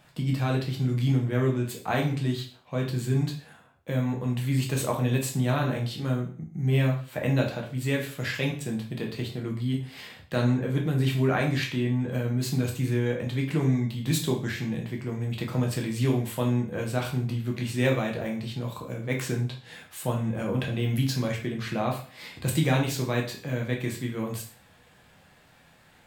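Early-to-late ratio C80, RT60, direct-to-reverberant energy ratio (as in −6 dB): 13.0 dB, 0.45 s, −0.5 dB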